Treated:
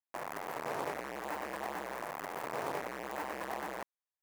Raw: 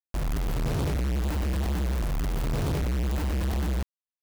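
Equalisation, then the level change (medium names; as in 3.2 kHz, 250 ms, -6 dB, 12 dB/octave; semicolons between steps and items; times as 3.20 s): high-pass 810 Hz 12 dB/octave; peaking EQ 1.4 kHz -9.5 dB 0.72 oct; resonant high shelf 2.3 kHz -13 dB, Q 1.5; +5.5 dB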